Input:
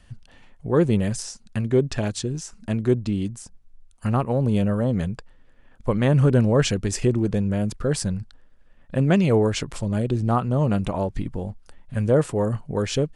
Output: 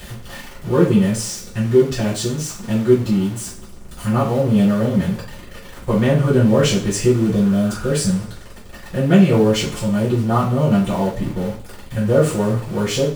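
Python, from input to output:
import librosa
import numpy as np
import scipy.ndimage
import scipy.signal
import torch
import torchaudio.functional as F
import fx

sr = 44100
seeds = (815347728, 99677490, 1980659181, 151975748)

y = x + 0.5 * 10.0 ** (-30.0 / 20.0) * np.sign(x)
y = fx.rev_double_slope(y, sr, seeds[0], early_s=0.38, late_s=2.3, knee_db=-26, drr_db=-9.0)
y = fx.spec_repair(y, sr, seeds[1], start_s=7.38, length_s=0.45, low_hz=740.0, high_hz=3000.0, source='both')
y = y * 10.0 ** (-6.0 / 20.0)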